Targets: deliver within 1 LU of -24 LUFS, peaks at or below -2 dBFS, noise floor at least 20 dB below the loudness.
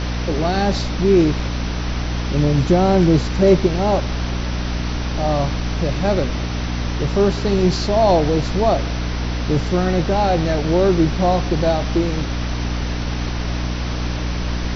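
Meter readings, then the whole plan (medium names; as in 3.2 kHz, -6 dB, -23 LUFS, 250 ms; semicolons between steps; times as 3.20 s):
hum 60 Hz; highest harmonic 300 Hz; hum level -21 dBFS; noise floor -23 dBFS; noise floor target -39 dBFS; loudness -19.0 LUFS; peak level -1.5 dBFS; loudness target -24.0 LUFS
-> de-hum 60 Hz, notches 5; noise print and reduce 16 dB; trim -5 dB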